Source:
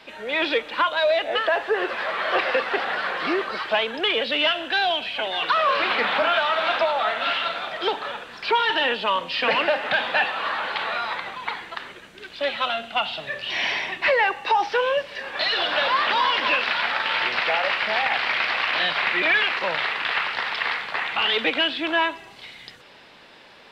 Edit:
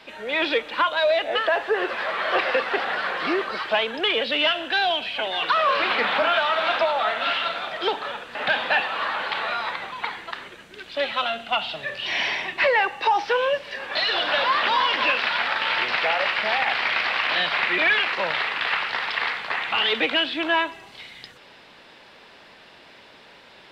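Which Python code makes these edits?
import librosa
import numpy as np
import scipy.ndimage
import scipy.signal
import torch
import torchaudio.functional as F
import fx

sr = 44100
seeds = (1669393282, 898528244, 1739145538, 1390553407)

y = fx.edit(x, sr, fx.cut(start_s=8.35, length_s=1.44), tone=tone)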